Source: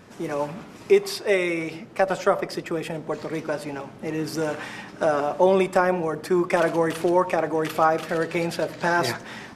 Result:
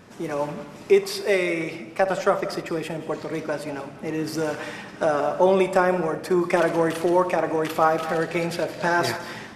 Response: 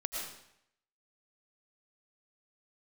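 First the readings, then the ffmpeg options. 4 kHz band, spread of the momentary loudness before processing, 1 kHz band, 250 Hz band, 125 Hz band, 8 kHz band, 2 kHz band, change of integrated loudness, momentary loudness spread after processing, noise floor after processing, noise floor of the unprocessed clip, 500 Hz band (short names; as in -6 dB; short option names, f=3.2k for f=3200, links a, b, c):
+0.5 dB, 10 LU, +0.5 dB, +0.5 dB, +0.5 dB, +0.5 dB, +0.5 dB, +0.5 dB, 10 LU, -42 dBFS, -43 dBFS, +0.5 dB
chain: -filter_complex "[0:a]asplit=2[a][b];[1:a]atrim=start_sample=2205,adelay=61[c];[b][c]afir=irnorm=-1:irlink=0,volume=-13dB[d];[a][d]amix=inputs=2:normalize=0"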